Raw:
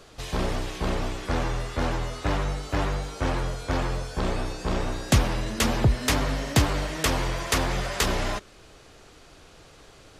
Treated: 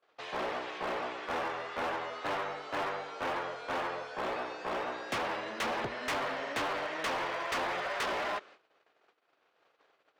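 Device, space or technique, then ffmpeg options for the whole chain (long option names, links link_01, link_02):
walkie-talkie: -af "highpass=540,lowpass=2500,asoftclip=type=hard:threshold=-29.5dB,agate=range=-28dB:threshold=-53dB:ratio=16:detection=peak"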